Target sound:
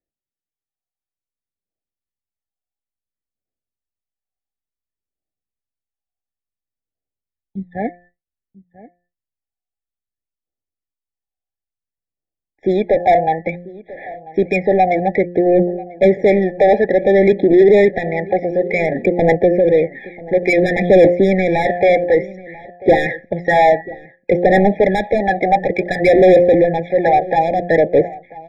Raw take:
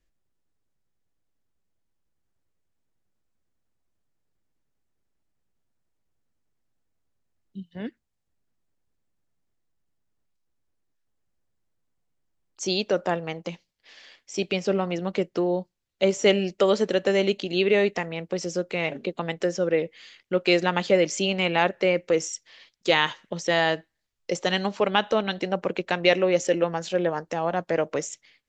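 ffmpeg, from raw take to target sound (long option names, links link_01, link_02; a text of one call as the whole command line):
ffmpeg -i in.wav -filter_complex "[0:a]lowpass=frequency=1900:width=0.5412,lowpass=frequency=1900:width=1.3066,bandreject=frequency=176.1:width_type=h:width=4,bandreject=frequency=352.2:width_type=h:width=4,bandreject=frequency=528.3:width_type=h:width=4,bandreject=frequency=704.4:width_type=h:width=4,bandreject=frequency=880.5:width_type=h:width=4,bandreject=frequency=1056.6:width_type=h:width=4,bandreject=frequency=1232.7:width_type=h:width=4,bandreject=frequency=1408.8:width_type=h:width=4,bandreject=frequency=1584.9:width_type=h:width=4,bandreject=frequency=1761:width_type=h:width=4,bandreject=frequency=1937.1:width_type=h:width=4,agate=range=-33dB:threshold=-54dB:ratio=3:detection=peak,equalizer=frequency=1500:width=3.4:gain=-4.5,aphaser=in_gain=1:out_gain=1:delay=1.4:decay=0.71:speed=0.57:type=triangular,asubboost=boost=3:cutoff=86,asplit=2[link_01][link_02];[link_02]highpass=frequency=720:poles=1,volume=29dB,asoftclip=type=tanh:threshold=-2.5dB[link_03];[link_01][link_03]amix=inputs=2:normalize=0,lowpass=frequency=1300:poles=1,volume=-6dB,asplit=2[link_04][link_05];[link_05]adelay=991.3,volume=-19dB,highshelf=frequency=4000:gain=-22.3[link_06];[link_04][link_06]amix=inputs=2:normalize=0,afftfilt=real='re*eq(mod(floor(b*sr/1024/820),2),0)':imag='im*eq(mod(floor(b*sr/1024/820),2),0)':win_size=1024:overlap=0.75,volume=1.5dB" out.wav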